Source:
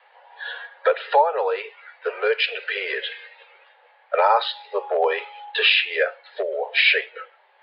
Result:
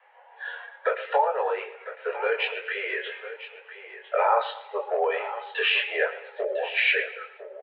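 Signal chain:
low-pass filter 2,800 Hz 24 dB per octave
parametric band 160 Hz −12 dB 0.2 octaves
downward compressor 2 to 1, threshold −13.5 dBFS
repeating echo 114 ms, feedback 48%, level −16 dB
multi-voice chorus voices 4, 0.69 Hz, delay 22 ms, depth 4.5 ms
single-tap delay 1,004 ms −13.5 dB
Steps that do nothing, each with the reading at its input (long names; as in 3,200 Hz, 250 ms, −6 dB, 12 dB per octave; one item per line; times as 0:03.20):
parametric band 160 Hz: nothing at its input below 340 Hz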